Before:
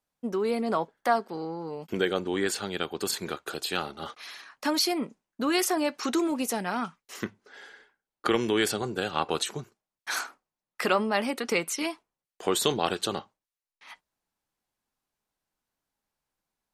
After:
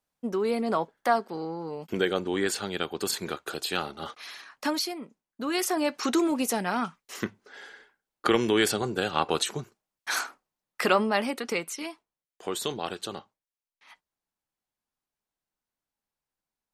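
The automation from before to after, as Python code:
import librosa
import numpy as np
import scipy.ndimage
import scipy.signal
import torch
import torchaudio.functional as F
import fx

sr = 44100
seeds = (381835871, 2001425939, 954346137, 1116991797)

y = fx.gain(x, sr, db=fx.line((4.65, 0.5), (4.99, -9.5), (5.96, 2.0), (11.03, 2.0), (11.87, -6.0)))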